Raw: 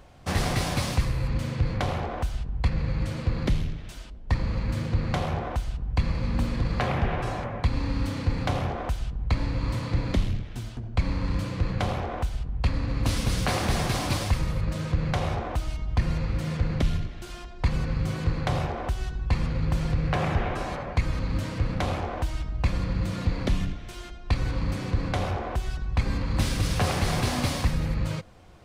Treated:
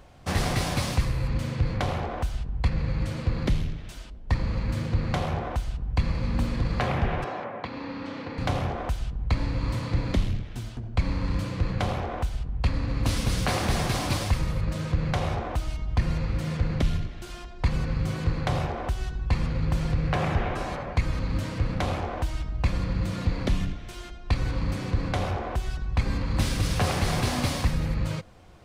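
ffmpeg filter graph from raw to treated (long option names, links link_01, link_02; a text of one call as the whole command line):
ffmpeg -i in.wav -filter_complex "[0:a]asettb=1/sr,asplit=3[link_01][link_02][link_03];[link_01]atrim=end=7.244[link_04];[link_02]atrim=start=7.24:end=8.38,asetpts=PTS-STARTPTS,afade=type=in:duration=0.004:curve=qsin,afade=type=out:start_time=1.136:duration=0.004:curve=qsin,highpass=280,lowpass=5100,aemphasis=mode=reproduction:type=50fm[link_05];[link_03]atrim=start=8.376[link_06];[link_04][link_05]acrossfade=duration=0.004:curve1=hsin:curve2=qsin[link_07];[link_07][link_06]acrossfade=duration=0.004:curve1=qsin:curve2=hsin" out.wav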